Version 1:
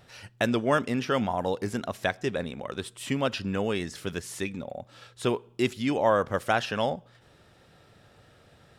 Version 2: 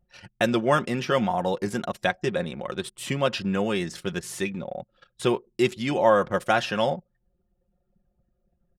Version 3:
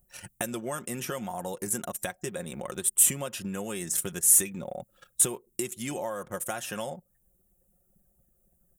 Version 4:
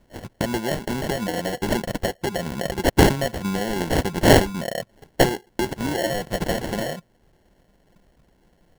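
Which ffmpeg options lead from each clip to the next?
-af "anlmdn=0.0631,aecho=1:1:5.6:0.52,volume=1.26"
-af "acompressor=threshold=0.0251:ratio=6,aexciter=amount=10.8:drive=7.5:freq=6900"
-filter_complex "[0:a]asplit=2[s0][s1];[s1]aeval=exprs='(mod(10.6*val(0)+1,2)-1)/10.6':c=same,volume=0.282[s2];[s0][s2]amix=inputs=2:normalize=0,acrusher=samples=36:mix=1:aa=0.000001,volume=2.24"

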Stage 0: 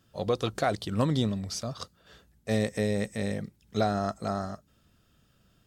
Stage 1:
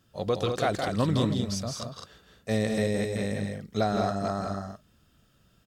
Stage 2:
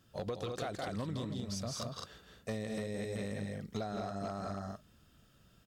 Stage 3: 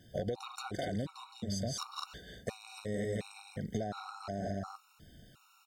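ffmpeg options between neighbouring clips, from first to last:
-af "aecho=1:1:166.2|207:0.501|0.501"
-af "acompressor=threshold=0.0224:ratio=20,asoftclip=type=hard:threshold=0.0355,volume=0.891"
-af "acompressor=threshold=0.01:ratio=6,afftfilt=real='re*gt(sin(2*PI*1.4*pts/sr)*(1-2*mod(floor(b*sr/1024/740),2)),0)':imag='im*gt(sin(2*PI*1.4*pts/sr)*(1-2*mod(floor(b*sr/1024/740),2)),0)':win_size=1024:overlap=0.75,volume=2.66"

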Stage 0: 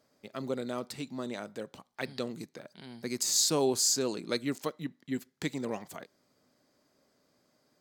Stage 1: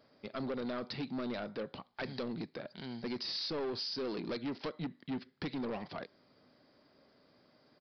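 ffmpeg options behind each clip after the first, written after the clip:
-af "acompressor=threshold=0.0282:ratio=12,aresample=11025,asoftclip=type=tanh:threshold=0.0126,aresample=44100,volume=1.78"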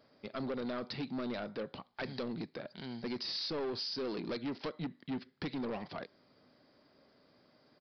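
-af anull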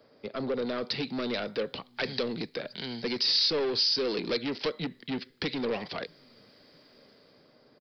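-filter_complex "[0:a]equalizer=f=460:t=o:w=0.5:g=7.5,acrossover=split=240|570|1900[s0][s1][s2][s3];[s0]aecho=1:1:650|1300|1950|2600:0.0708|0.0404|0.023|0.0131[s4];[s3]dynaudnorm=f=120:g=13:m=3.16[s5];[s4][s1][s2][s5]amix=inputs=4:normalize=0,volume=1.5"

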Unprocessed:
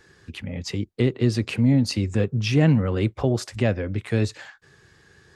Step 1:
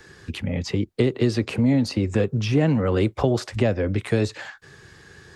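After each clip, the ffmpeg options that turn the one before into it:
-filter_complex "[0:a]acrossover=split=300|1200|4200[s0][s1][s2][s3];[s0]acompressor=threshold=0.0316:ratio=4[s4];[s1]acompressor=threshold=0.0447:ratio=4[s5];[s2]acompressor=threshold=0.00708:ratio=4[s6];[s3]acompressor=threshold=0.00355:ratio=4[s7];[s4][s5][s6][s7]amix=inputs=4:normalize=0,volume=2.24"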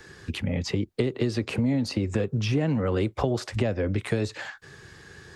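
-af "acompressor=threshold=0.0708:ratio=2.5"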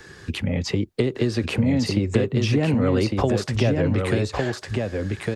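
-af "aecho=1:1:1155:0.668,volume=1.5"

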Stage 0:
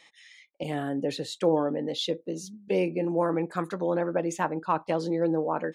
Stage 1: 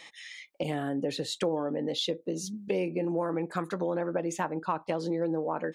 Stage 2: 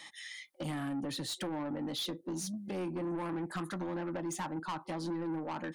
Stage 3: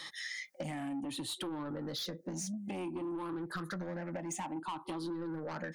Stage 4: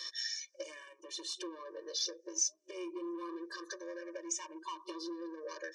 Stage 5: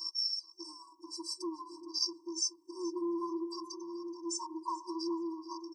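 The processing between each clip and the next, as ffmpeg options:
-af "acompressor=threshold=0.0126:ratio=3,volume=2.37"
-filter_complex "[0:a]superequalizer=7b=0.282:8b=0.562:12b=0.501:16b=2,acrossover=split=110[s0][s1];[s1]asoftclip=type=tanh:threshold=0.0224[s2];[s0][s2]amix=inputs=2:normalize=0"
-af "afftfilt=real='re*pow(10,10/40*sin(2*PI*(0.6*log(max(b,1)*sr/1024/100)/log(2)-(0.57)*(pts-256)/sr)))':imag='im*pow(10,10/40*sin(2*PI*(0.6*log(max(b,1)*sr/1024/100)/log(2)-(0.57)*(pts-256)/sr)))':win_size=1024:overlap=0.75,acompressor=threshold=0.00794:ratio=6,volume=1.68"
-af "lowpass=f=5800:t=q:w=9.7,afftfilt=real='re*eq(mod(floor(b*sr/1024/310),2),1)':imag='im*eq(mod(floor(b*sr/1024/310),2),1)':win_size=1024:overlap=0.75,volume=0.891"
-filter_complex "[0:a]asuperstop=centerf=2300:order=20:qfactor=0.63,asplit=2[s0][s1];[s1]adelay=427,lowpass=f=3000:p=1,volume=0.251,asplit=2[s2][s3];[s3]adelay=427,lowpass=f=3000:p=1,volume=0.32,asplit=2[s4][s5];[s5]adelay=427,lowpass=f=3000:p=1,volume=0.32[s6];[s0][s2][s4][s6]amix=inputs=4:normalize=0,afftfilt=real='re*eq(mod(floor(b*sr/1024/380),2),0)':imag='im*eq(mod(floor(b*sr/1024/380),2),0)':win_size=1024:overlap=0.75,volume=2.24"

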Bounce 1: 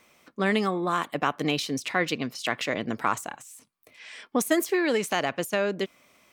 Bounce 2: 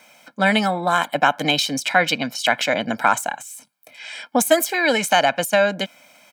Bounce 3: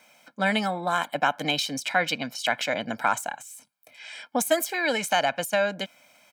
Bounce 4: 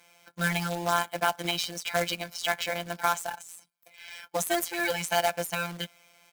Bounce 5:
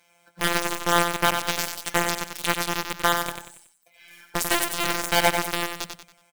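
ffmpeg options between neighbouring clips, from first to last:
-af "highpass=220,aecho=1:1:1.3:0.83,volume=2.37"
-af "asubboost=boost=2:cutoff=110,volume=0.473"
-af "afftfilt=real='hypot(re,im)*cos(PI*b)':imag='0':win_size=1024:overlap=0.75,acrusher=bits=2:mode=log:mix=0:aa=0.000001"
-filter_complex "[0:a]aeval=exprs='0.299*(cos(1*acos(clip(val(0)/0.299,-1,1)))-cos(1*PI/2))+0.00841*(cos(6*acos(clip(val(0)/0.299,-1,1)))-cos(6*PI/2))+0.0596*(cos(7*acos(clip(val(0)/0.299,-1,1)))-cos(7*PI/2))':c=same,asplit=2[s0][s1];[s1]aecho=0:1:93|186|279|372:0.501|0.18|0.065|0.0234[s2];[s0][s2]amix=inputs=2:normalize=0,volume=1.78"

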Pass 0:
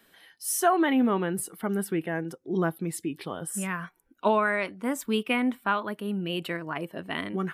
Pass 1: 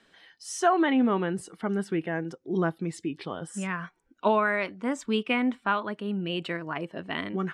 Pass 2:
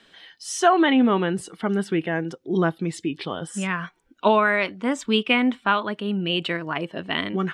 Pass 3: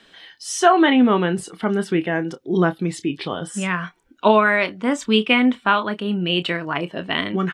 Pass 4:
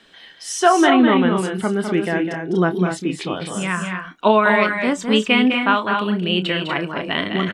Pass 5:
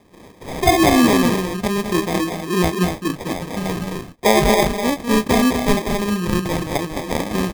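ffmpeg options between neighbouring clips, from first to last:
-af "lowpass=f=7200:w=0.5412,lowpass=f=7200:w=1.3066"
-af "equalizer=f=3300:w=1.7:g=6,volume=1.78"
-filter_complex "[0:a]asplit=2[s0][s1];[s1]adelay=28,volume=0.251[s2];[s0][s2]amix=inputs=2:normalize=0,volume=1.41"
-af "aecho=1:1:204.1|242:0.447|0.447"
-af "acrusher=samples=31:mix=1:aa=0.000001"

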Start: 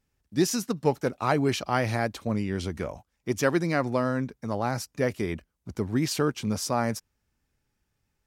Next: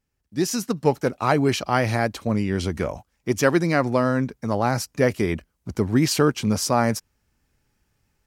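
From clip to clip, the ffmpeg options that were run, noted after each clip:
-af "bandreject=f=3600:w=26,dynaudnorm=f=330:g=3:m=3.16,volume=0.75"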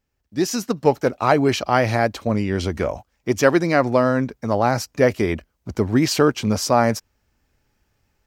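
-af "equalizer=f=160:t=o:w=0.67:g=-4,equalizer=f=630:t=o:w=0.67:g=3,equalizer=f=10000:t=o:w=0.67:g=-7,volume=1.33"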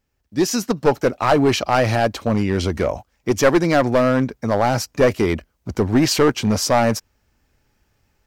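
-af "aeval=exprs='clip(val(0),-1,0.2)':c=same,volume=1.41"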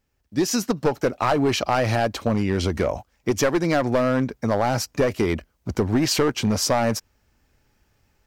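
-af "acompressor=threshold=0.141:ratio=6"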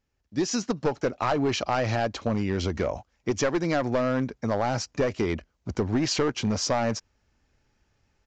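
-af "aresample=16000,aresample=44100,volume=0.596"

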